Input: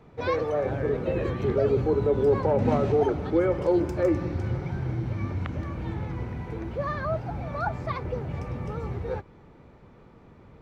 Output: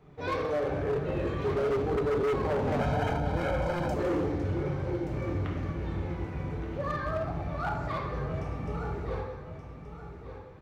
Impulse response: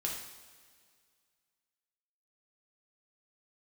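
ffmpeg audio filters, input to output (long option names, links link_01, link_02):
-filter_complex "[0:a]aecho=1:1:1176|2352|3528:0.299|0.0836|0.0234[link_01];[1:a]atrim=start_sample=2205[link_02];[link_01][link_02]afir=irnorm=-1:irlink=0,asoftclip=type=hard:threshold=-20.5dB,asettb=1/sr,asplit=3[link_03][link_04][link_05];[link_03]atrim=end=2.804[link_06];[link_04]atrim=start=2.8:end=3.94,asetpts=PTS-STARTPTS,afade=type=in:duration=0.004:curve=qsin,afade=type=out:start_time=1.136:duration=0.004:curve=qsin,aecho=1:1:1.3:0.93,atrim=end_sample=50274[link_07];[link_05]atrim=start=3.936[link_08];[link_06][link_07]acrossfade=duration=0.004:curve1=hsin:curve2=qsin[link_09];[link_09][link_08]acrossfade=duration=0.004:curve1=qsin:curve2=hsin,volume=-4.5dB"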